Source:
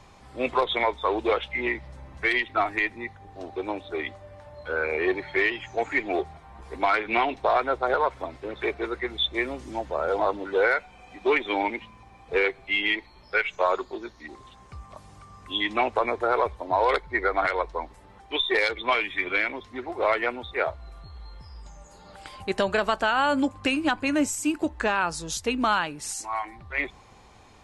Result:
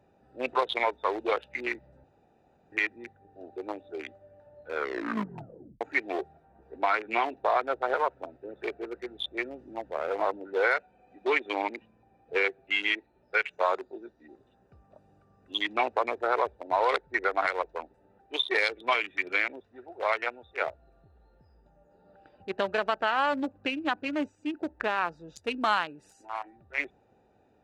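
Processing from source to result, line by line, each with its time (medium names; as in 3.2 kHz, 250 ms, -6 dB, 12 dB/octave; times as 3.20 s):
2.04–2.72 s: room tone
4.73 s: tape stop 1.08 s
6.45–10.63 s: treble shelf 4.7 kHz -11 dB
19.60–20.62 s: peaking EQ 280 Hz -8.5 dB 1.2 oct
21.55–25.36 s: distance through air 140 m
whole clip: local Wiener filter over 41 samples; high-pass 530 Hz 6 dB/octave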